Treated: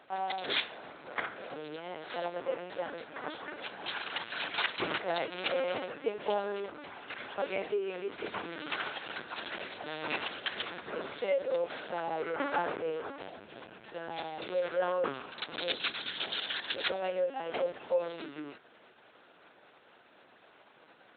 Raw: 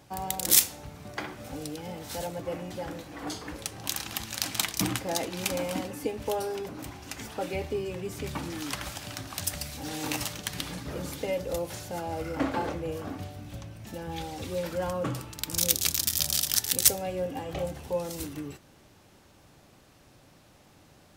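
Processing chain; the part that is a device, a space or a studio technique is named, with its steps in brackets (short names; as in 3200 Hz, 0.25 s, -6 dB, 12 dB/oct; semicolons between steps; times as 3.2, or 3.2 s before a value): talking toy (LPC vocoder at 8 kHz pitch kept; HPF 380 Hz 12 dB/oct; bell 1500 Hz +6 dB 0.37 oct); gain +1.5 dB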